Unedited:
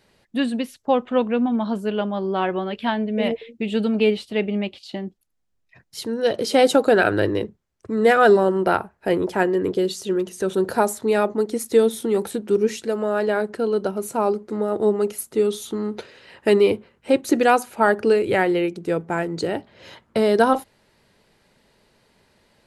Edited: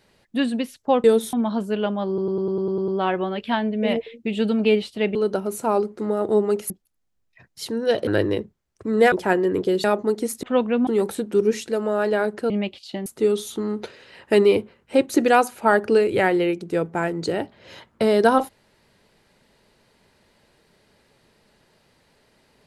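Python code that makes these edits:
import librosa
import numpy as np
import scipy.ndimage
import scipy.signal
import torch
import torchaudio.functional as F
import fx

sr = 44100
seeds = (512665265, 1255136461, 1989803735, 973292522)

y = fx.edit(x, sr, fx.swap(start_s=1.04, length_s=0.44, other_s=11.74, other_length_s=0.29),
    fx.stutter(start_s=2.23, slice_s=0.1, count=9),
    fx.swap(start_s=4.5, length_s=0.56, other_s=13.66, other_length_s=1.55),
    fx.cut(start_s=6.43, length_s=0.68),
    fx.cut(start_s=8.16, length_s=1.06),
    fx.cut(start_s=9.94, length_s=1.21), tone=tone)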